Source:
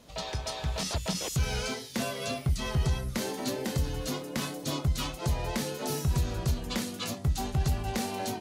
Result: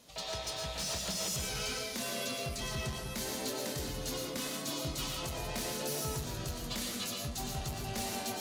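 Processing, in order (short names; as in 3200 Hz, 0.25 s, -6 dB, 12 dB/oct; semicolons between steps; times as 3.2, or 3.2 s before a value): high shelf 2700 Hz +8.5 dB; soft clip -25 dBFS, distortion -14 dB; low shelf 82 Hz -8.5 dB; digital reverb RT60 0.79 s, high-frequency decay 0.5×, pre-delay 75 ms, DRR 0 dB; gain -6.5 dB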